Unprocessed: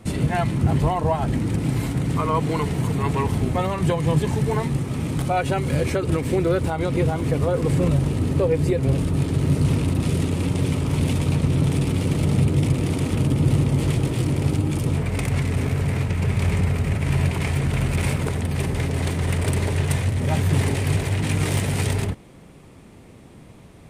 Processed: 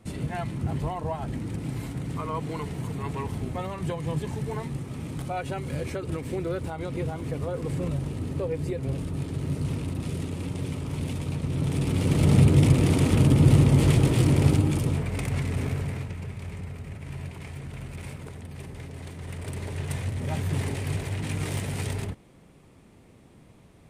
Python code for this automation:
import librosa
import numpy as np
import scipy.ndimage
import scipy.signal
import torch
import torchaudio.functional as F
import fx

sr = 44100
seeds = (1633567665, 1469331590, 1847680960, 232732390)

y = fx.gain(x, sr, db=fx.line((11.42, -9.5), (12.33, 1.5), (14.47, 1.5), (15.08, -5.5), (15.71, -5.5), (16.38, -16.0), (19.12, -16.0), (20.06, -8.0)))